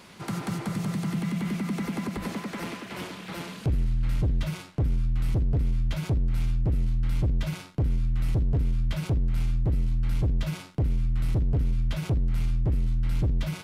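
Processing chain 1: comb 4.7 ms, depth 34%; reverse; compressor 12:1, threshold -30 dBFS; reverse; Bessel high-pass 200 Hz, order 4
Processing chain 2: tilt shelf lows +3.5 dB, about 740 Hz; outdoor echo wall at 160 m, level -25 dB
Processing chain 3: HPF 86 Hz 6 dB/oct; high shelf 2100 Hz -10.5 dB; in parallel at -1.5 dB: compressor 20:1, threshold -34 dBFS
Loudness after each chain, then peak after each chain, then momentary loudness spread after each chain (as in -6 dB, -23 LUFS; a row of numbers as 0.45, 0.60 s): -41.5, -25.5, -30.0 LUFS; -24.0, -16.0, -15.5 dBFS; 11, 7, 4 LU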